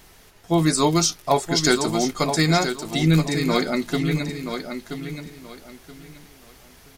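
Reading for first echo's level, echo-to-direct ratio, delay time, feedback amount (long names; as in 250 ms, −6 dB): −8.0 dB, −7.5 dB, 977 ms, 25%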